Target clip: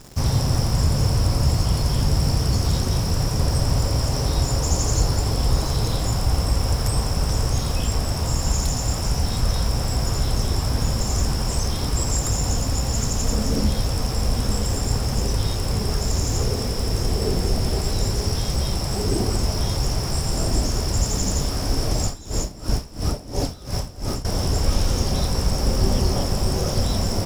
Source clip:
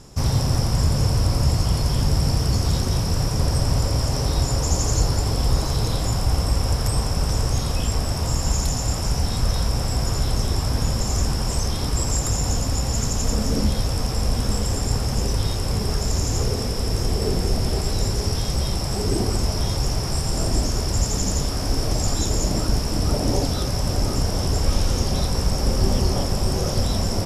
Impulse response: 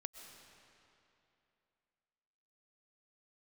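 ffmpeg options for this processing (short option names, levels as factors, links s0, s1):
-filter_complex "[0:a]acrusher=bits=8:dc=4:mix=0:aa=0.000001,asettb=1/sr,asplit=3[s0][s1][s2];[s0]atrim=end=22.044[s3];[s1]atrim=start=22.04:end=24.25,asetpts=PTS-STARTPTS,afade=t=in:d=0.004:c=qsin,afade=t=out:st=2.206:d=0.004:c=qsin,aeval=exprs='val(0)*pow(10,-19*(0.5-0.5*cos(2*PI*2.9*n/s))/20)':c=same[s4];[s2]atrim=start=24.246[s5];[s3][s4]acrossfade=d=0.004:c1=hsin:c2=qsin[s6];[s6][s5]acrossfade=d=0.004:c1=qsin:c2=hsin"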